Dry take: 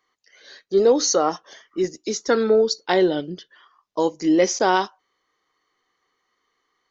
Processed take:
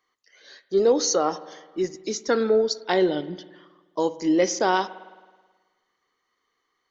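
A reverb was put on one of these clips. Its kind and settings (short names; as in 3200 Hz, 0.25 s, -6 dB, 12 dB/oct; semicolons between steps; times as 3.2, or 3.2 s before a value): spring tank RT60 1.4 s, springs 53 ms, chirp 55 ms, DRR 15.5 dB; gain -3 dB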